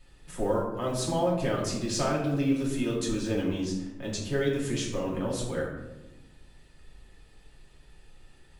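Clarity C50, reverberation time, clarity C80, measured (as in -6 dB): 3.5 dB, 1.0 s, 6.5 dB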